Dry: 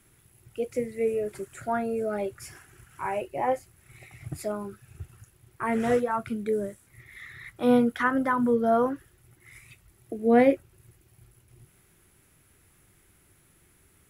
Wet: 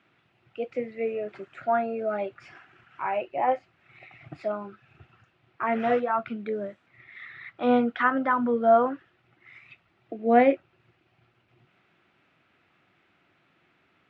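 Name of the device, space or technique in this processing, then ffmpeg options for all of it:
kitchen radio: -af "highpass=210,equalizer=frequency=410:width_type=q:width=4:gain=-5,equalizer=frequency=700:width_type=q:width=4:gain=6,equalizer=frequency=1300:width_type=q:width=4:gain=4,equalizer=frequency=2600:width_type=q:width=4:gain=4,lowpass=frequency=3800:width=0.5412,lowpass=frequency=3800:width=1.3066"

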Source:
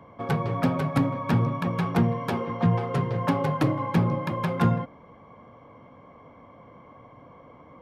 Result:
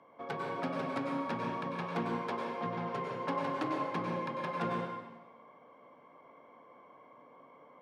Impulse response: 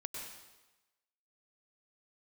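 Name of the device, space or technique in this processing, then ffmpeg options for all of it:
supermarket ceiling speaker: -filter_complex "[0:a]highpass=320,lowpass=6300[link_01];[1:a]atrim=start_sample=2205[link_02];[link_01][link_02]afir=irnorm=-1:irlink=0,volume=-5dB"

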